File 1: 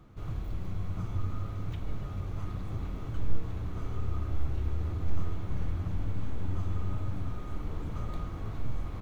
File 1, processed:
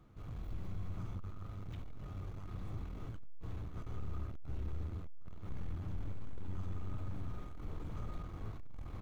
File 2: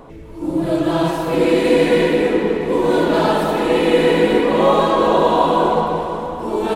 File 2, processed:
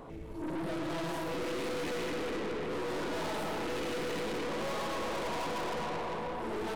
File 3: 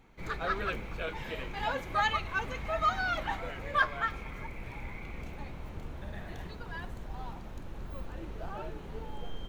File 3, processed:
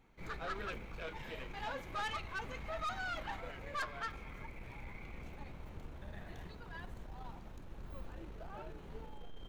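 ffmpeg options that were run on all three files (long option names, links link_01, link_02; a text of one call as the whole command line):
ffmpeg -i in.wav -af "aeval=exprs='(tanh(28.2*val(0)+0.4)-tanh(0.4))/28.2':channel_layout=same,volume=-5.5dB" out.wav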